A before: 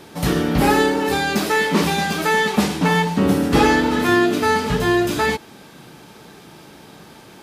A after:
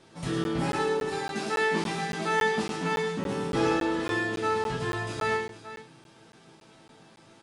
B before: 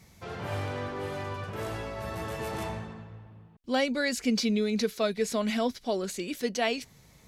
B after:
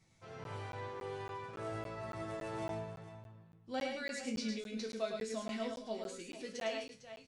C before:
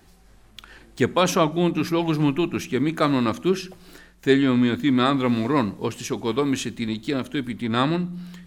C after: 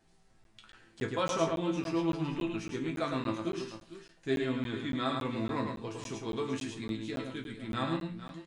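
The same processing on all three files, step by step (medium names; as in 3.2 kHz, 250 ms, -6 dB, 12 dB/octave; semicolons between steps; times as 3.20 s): chord resonator A2 minor, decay 0.27 s; resampled via 22.05 kHz; on a send: multi-tap echo 107/453 ms -5/-13 dB; on the sum: crackling interface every 0.28 s, samples 512, zero, from 0.44 s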